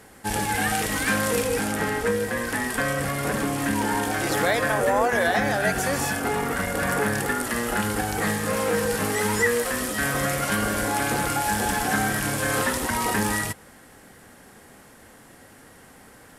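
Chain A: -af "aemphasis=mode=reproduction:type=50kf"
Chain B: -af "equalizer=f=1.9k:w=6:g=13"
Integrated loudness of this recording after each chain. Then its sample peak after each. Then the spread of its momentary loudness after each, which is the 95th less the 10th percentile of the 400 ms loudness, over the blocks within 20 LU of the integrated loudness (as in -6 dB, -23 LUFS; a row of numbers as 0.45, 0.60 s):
-25.0, -20.5 LUFS; -10.0, -2.0 dBFS; 4, 5 LU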